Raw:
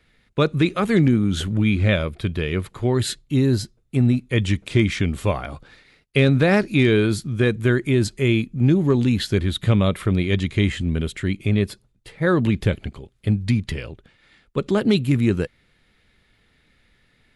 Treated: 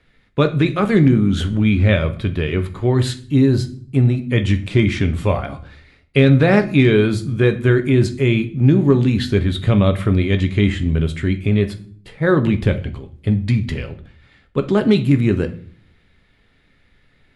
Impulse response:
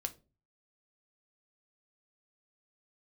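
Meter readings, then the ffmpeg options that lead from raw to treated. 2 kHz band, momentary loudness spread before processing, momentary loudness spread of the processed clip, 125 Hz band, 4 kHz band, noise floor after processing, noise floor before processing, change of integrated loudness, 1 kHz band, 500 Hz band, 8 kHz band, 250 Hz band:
+2.0 dB, 9 LU, 9 LU, +4.0 dB, +0.5 dB, -57 dBFS, -62 dBFS, +3.5 dB, +3.0 dB, +4.0 dB, n/a, +3.5 dB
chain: -filter_complex "[0:a]aemphasis=mode=reproduction:type=cd,asplit=2[a][b];[1:a]atrim=start_sample=2205,asetrate=22932,aresample=44100[c];[b][c]afir=irnorm=-1:irlink=0,volume=5.5dB[d];[a][d]amix=inputs=2:normalize=0,volume=-8dB"

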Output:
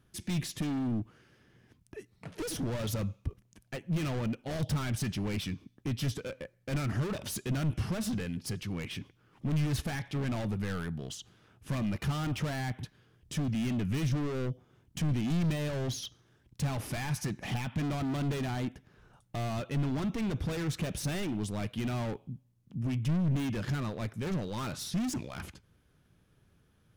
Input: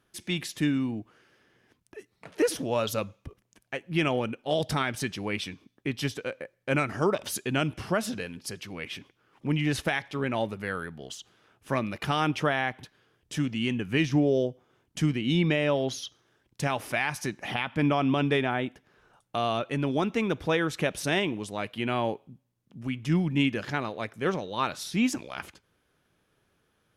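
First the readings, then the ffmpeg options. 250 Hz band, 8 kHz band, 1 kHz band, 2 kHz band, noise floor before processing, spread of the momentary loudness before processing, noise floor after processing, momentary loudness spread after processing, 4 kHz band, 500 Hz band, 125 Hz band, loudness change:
-4.5 dB, -2.5 dB, -10.5 dB, -11.0 dB, -73 dBFS, 13 LU, -68 dBFS, 12 LU, -7.5 dB, -10.0 dB, +0.5 dB, -5.0 dB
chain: -af "volume=34dB,asoftclip=hard,volume=-34dB,bass=f=250:g=13,treble=f=4k:g=2,volume=-2.5dB"

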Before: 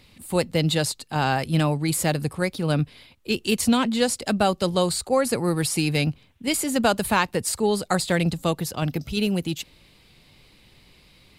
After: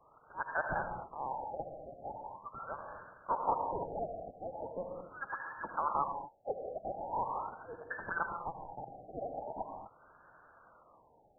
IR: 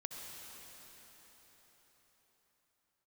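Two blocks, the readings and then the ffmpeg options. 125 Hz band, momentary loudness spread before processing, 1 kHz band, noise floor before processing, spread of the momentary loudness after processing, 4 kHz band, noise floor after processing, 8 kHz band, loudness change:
-28.0 dB, 6 LU, -8.0 dB, -56 dBFS, 12 LU, under -40 dB, -65 dBFS, under -40 dB, -16.0 dB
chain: -filter_complex "[0:a]lowpass=f=3.1k:t=q:w=0.5098,lowpass=f=3.1k:t=q:w=0.6013,lowpass=f=3.1k:t=q:w=0.9,lowpass=f=3.1k:t=q:w=2.563,afreqshift=-3600[a];[1:a]atrim=start_sample=2205,afade=t=out:st=0.31:d=0.01,atrim=end_sample=14112[b];[a][b]afir=irnorm=-1:irlink=0,afftfilt=real='re*lt(b*sr/1024,780*pow(1800/780,0.5+0.5*sin(2*PI*0.41*pts/sr)))':imag='im*lt(b*sr/1024,780*pow(1800/780,0.5+0.5*sin(2*PI*0.41*pts/sr)))':win_size=1024:overlap=0.75,volume=4dB"

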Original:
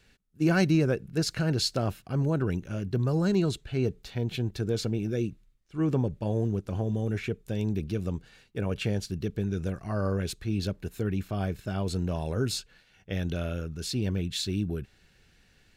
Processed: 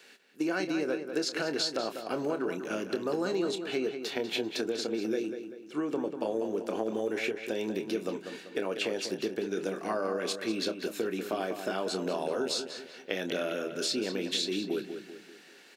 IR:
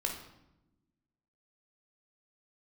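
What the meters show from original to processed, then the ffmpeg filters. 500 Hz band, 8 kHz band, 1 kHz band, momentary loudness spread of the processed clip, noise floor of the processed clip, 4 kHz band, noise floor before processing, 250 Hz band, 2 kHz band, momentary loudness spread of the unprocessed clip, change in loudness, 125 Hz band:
+1.5 dB, 0.0 dB, +2.0 dB, 5 LU, -54 dBFS, +2.0 dB, -63 dBFS, -4.0 dB, +1.5 dB, 8 LU, -3.0 dB, -20.5 dB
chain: -filter_complex "[0:a]acrossover=split=8100[a][b];[b]acompressor=threshold=-56dB:ratio=4:attack=1:release=60[c];[a][c]amix=inputs=2:normalize=0,highpass=f=290:w=0.5412,highpass=f=290:w=1.3066,acompressor=threshold=-38dB:ratio=6,asplit=2[d][e];[e]adelay=27,volume=-10dB[f];[d][f]amix=inputs=2:normalize=0,asplit=2[g][h];[h]adelay=194,lowpass=f=3.9k:p=1,volume=-8dB,asplit=2[i][j];[j]adelay=194,lowpass=f=3.9k:p=1,volume=0.44,asplit=2[k][l];[l]adelay=194,lowpass=f=3.9k:p=1,volume=0.44,asplit=2[m][n];[n]adelay=194,lowpass=f=3.9k:p=1,volume=0.44,asplit=2[o][p];[p]adelay=194,lowpass=f=3.9k:p=1,volume=0.44[q];[g][i][k][m][o][q]amix=inputs=6:normalize=0,volume=9dB"

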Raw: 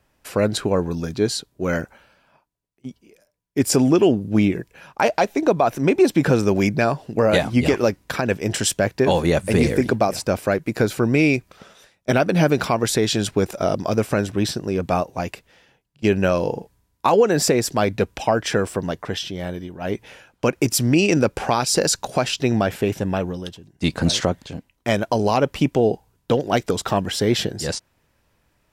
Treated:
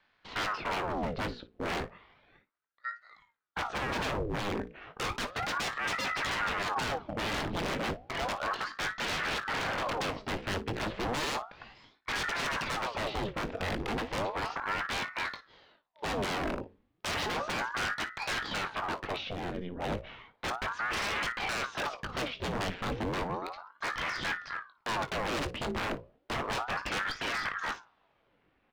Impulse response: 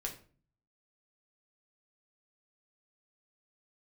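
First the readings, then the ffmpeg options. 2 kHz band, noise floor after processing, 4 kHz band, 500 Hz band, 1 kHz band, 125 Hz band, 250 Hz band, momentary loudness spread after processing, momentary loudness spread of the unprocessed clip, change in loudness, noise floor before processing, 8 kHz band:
-5.0 dB, -72 dBFS, -8.5 dB, -18.0 dB, -8.0 dB, -17.5 dB, -19.0 dB, 7 LU, 11 LU, -13.0 dB, -67 dBFS, -17.0 dB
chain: -filter_complex "[0:a]highpass=58,deesser=0.7,lowpass=f=3.4k:w=0.5412,lowpass=f=3.4k:w=1.3066,bandreject=f=60:t=h:w=6,bandreject=f=120:t=h:w=6,bandreject=f=180:t=h:w=6,bandreject=f=240:t=h:w=6,bandreject=f=300:t=h:w=6,bandreject=f=360:t=h:w=6,acontrast=64,aeval=exprs='0.133*(abs(mod(val(0)/0.133+3,4)-2)-1)':c=same,aecho=1:1:20|56:0.299|0.133,asplit=2[a][b];[1:a]atrim=start_sample=2205[c];[b][c]afir=irnorm=-1:irlink=0,volume=-20.5dB[d];[a][d]amix=inputs=2:normalize=0,aeval=exprs='val(0)*sin(2*PI*870*n/s+870*0.9/0.33*sin(2*PI*0.33*n/s))':c=same,volume=-8.5dB"

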